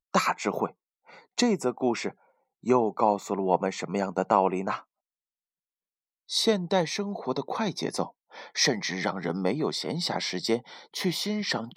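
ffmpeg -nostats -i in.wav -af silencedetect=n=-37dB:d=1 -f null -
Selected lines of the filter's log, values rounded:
silence_start: 4.79
silence_end: 6.30 | silence_duration: 1.50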